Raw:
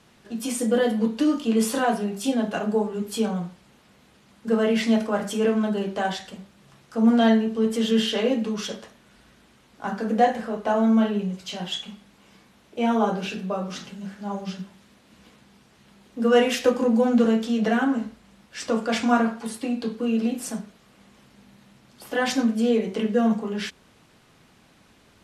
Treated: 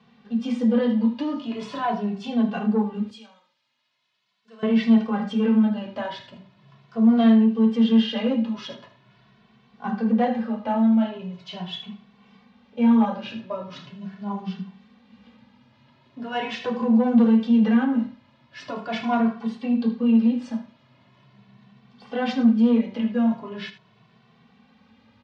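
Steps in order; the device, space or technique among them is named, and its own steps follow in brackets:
0:03.10–0:04.63: first difference
single-tap delay 78 ms −13.5 dB
barber-pole flanger into a guitar amplifier (barber-pole flanger 2.2 ms +0.41 Hz; soft clipping −15.5 dBFS, distortion −18 dB; loudspeaker in its box 88–4,300 Hz, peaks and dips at 120 Hz +10 dB, 230 Hz +9 dB, 330 Hz −10 dB, 1,000 Hz +5 dB, 1,400 Hz −3 dB)

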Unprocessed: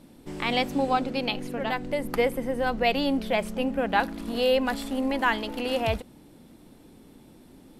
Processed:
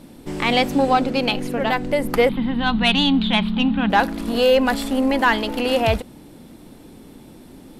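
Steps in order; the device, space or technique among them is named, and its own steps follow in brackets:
0:02.29–0:03.90: drawn EQ curve 140 Hz 0 dB, 200 Hz +8 dB, 550 Hz −18 dB, 880 Hz +2 dB, 2,100 Hz −2 dB, 3,800 Hz +12 dB, 6,200 Hz −29 dB, 13,000 Hz −22 dB
saturation between pre-emphasis and de-emphasis (high-shelf EQ 5,800 Hz +10.5 dB; soft clipping −14.5 dBFS, distortion −19 dB; high-shelf EQ 5,800 Hz −10.5 dB)
level +8.5 dB

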